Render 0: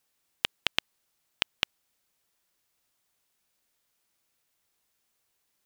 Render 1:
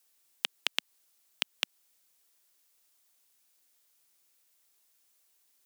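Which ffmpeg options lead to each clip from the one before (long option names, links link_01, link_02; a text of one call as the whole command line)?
ffmpeg -i in.wav -af "highpass=frequency=220:width=0.5412,highpass=frequency=220:width=1.3066,highshelf=frequency=4000:gain=9.5,alimiter=limit=-5dB:level=0:latency=1:release=145,volume=-1.5dB" out.wav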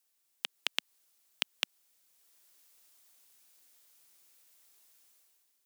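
ffmpeg -i in.wav -af "dynaudnorm=framelen=130:gausssize=9:maxgain=12dB,volume=-6.5dB" out.wav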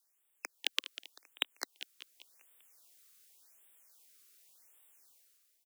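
ffmpeg -i in.wav -af "aecho=1:1:195|390|585|780|975:0.211|0.104|0.0507|0.0249|0.0122,afreqshift=73,afftfilt=real='re*(1-between(b*sr/1024,740*pow(5400/740,0.5+0.5*sin(2*PI*0.88*pts/sr))/1.41,740*pow(5400/740,0.5+0.5*sin(2*PI*0.88*pts/sr))*1.41))':imag='im*(1-between(b*sr/1024,740*pow(5400/740,0.5+0.5*sin(2*PI*0.88*pts/sr))/1.41,740*pow(5400/740,0.5+0.5*sin(2*PI*0.88*pts/sr))*1.41))':win_size=1024:overlap=0.75" out.wav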